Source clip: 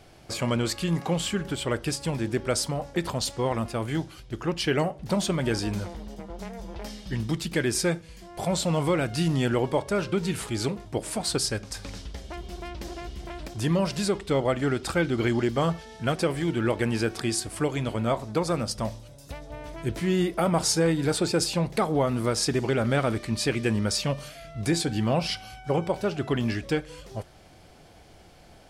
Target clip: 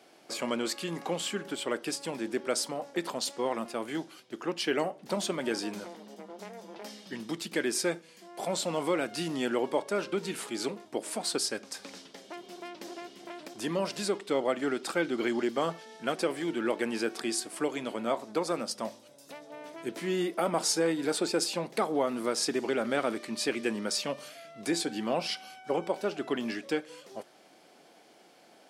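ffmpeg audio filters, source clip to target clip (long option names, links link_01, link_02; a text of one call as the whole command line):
ffmpeg -i in.wav -af "highpass=frequency=230:width=0.5412,highpass=frequency=230:width=1.3066,volume=-3.5dB" out.wav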